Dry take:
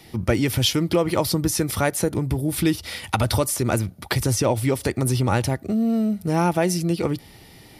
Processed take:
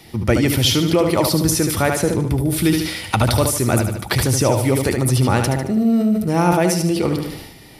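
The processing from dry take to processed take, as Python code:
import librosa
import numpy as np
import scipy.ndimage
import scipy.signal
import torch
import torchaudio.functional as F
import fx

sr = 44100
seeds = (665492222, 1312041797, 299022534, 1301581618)

y = fx.high_shelf(x, sr, hz=11000.0, db=-12.0, at=(1.79, 2.29))
y = fx.echo_feedback(y, sr, ms=74, feedback_pct=44, wet_db=-7)
y = fx.sustainer(y, sr, db_per_s=59.0)
y = y * librosa.db_to_amplitude(3.0)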